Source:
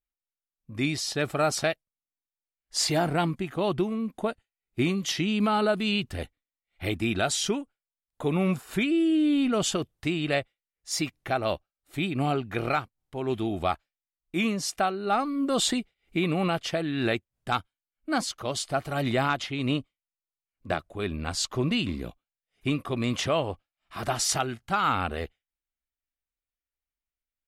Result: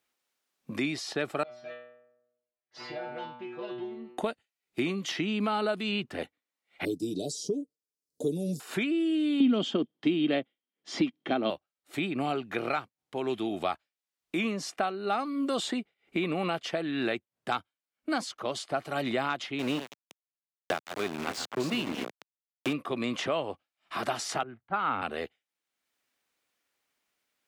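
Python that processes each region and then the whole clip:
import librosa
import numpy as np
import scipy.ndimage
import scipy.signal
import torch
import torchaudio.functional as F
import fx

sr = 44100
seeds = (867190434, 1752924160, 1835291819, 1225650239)

y = fx.chain(x, sr, fx.tube_stage(drive_db=21.0, bias=0.45),
    fx.air_absorb(metres=280.0),
    fx.stiff_resonator(f0_hz=120.0, decay_s=0.74, stiffness=0.002), at=(1.43, 4.18))
y = fx.chain(y, sr, fx.cheby1_bandstop(low_hz=470.0, high_hz=5000.0, order=3),
    fx.comb(ms=6.8, depth=0.55), at=(6.85, 8.6))
y = fx.chain(y, sr, fx.bandpass_edges(low_hz=120.0, high_hz=4100.0),
    fx.small_body(hz=(250.0, 3200.0), ring_ms=25, db=16), at=(9.4, 11.5))
y = fx.chain(y, sr, fx.reverse_delay(ms=176, wet_db=-10.5),
    fx.sample_gate(floor_db=-30.5), at=(19.59, 22.73))
y = fx.chain(y, sr, fx.lowpass(hz=1900.0, slope=12),
    fx.band_widen(depth_pct=100), at=(24.43, 25.02))
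y = scipy.signal.sosfilt(scipy.signal.butter(2, 220.0, 'highpass', fs=sr, output='sos'), y)
y = fx.high_shelf(y, sr, hz=8200.0, db=-9.5)
y = fx.band_squash(y, sr, depth_pct=70)
y = F.gain(torch.from_numpy(y), -3.0).numpy()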